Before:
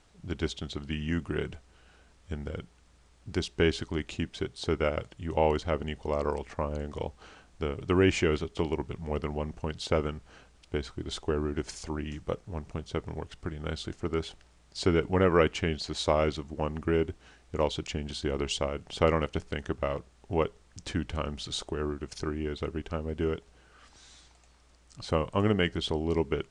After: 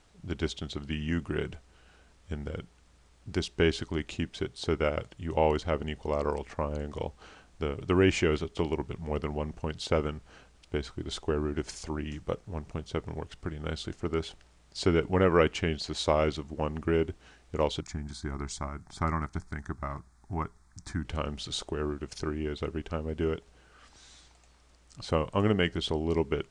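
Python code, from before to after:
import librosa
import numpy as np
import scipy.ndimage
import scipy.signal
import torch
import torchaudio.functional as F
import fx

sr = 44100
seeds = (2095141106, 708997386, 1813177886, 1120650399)

y = fx.fixed_phaser(x, sr, hz=1200.0, stages=4, at=(17.8, 21.05))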